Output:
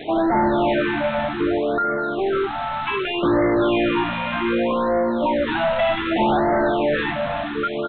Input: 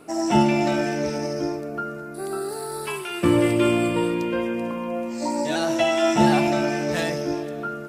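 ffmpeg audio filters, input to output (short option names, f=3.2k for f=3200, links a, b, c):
-filter_complex "[0:a]bandreject=f=50:t=h:w=6,bandreject=f=100:t=h:w=6,bandreject=f=150:t=h:w=6,bandreject=f=200:t=h:w=6,asplit=2[a][b];[b]highpass=f=720:p=1,volume=32dB,asoftclip=type=tanh:threshold=-4dB[c];[a][c]amix=inputs=2:normalize=0,lowpass=f=1.2k:p=1,volume=-6dB,crystalizer=i=1:c=0,aresample=8000,acrusher=bits=4:mix=0:aa=0.000001,aresample=44100,afftfilt=real='re*(1-between(b*sr/1024,360*pow(3100/360,0.5+0.5*sin(2*PI*0.65*pts/sr))/1.41,360*pow(3100/360,0.5+0.5*sin(2*PI*0.65*pts/sr))*1.41))':imag='im*(1-between(b*sr/1024,360*pow(3100/360,0.5+0.5*sin(2*PI*0.65*pts/sr))/1.41,360*pow(3100/360,0.5+0.5*sin(2*PI*0.65*pts/sr))*1.41))':win_size=1024:overlap=0.75,volume=-6dB"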